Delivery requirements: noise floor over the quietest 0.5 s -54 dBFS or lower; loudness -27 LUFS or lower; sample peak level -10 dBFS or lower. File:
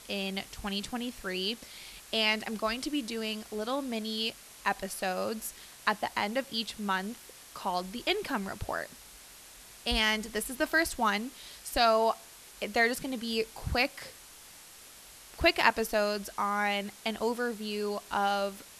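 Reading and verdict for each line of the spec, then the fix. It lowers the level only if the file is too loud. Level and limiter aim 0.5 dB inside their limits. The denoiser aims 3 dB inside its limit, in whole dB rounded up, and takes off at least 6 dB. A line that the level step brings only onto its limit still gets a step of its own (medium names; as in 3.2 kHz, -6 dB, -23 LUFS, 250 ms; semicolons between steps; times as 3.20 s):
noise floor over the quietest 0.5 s -52 dBFS: fail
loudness -31.0 LUFS: pass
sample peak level -7.0 dBFS: fail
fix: noise reduction 6 dB, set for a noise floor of -52 dBFS; peak limiter -10.5 dBFS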